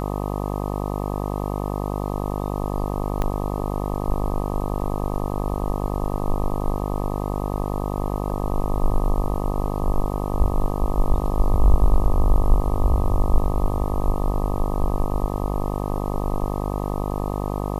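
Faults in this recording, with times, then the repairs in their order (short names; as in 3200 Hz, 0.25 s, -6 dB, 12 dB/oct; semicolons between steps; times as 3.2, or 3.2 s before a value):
buzz 50 Hz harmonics 25 -26 dBFS
3.22 pop -12 dBFS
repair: de-click; de-hum 50 Hz, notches 25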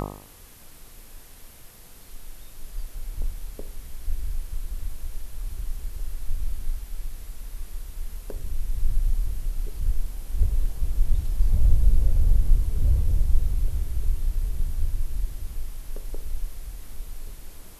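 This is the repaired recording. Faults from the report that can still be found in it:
3.22 pop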